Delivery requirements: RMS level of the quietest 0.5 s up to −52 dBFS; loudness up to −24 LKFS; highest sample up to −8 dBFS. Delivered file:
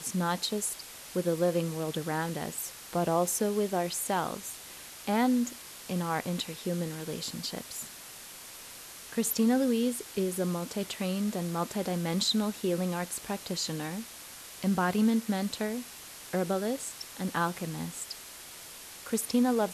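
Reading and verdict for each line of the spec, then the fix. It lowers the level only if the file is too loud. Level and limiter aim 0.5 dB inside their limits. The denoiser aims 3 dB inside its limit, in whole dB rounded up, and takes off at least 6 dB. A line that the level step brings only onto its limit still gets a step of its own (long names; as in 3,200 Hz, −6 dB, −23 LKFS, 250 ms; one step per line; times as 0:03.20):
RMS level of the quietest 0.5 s −47 dBFS: out of spec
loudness −31.0 LKFS: in spec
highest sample −15.0 dBFS: in spec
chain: broadband denoise 8 dB, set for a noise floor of −47 dBFS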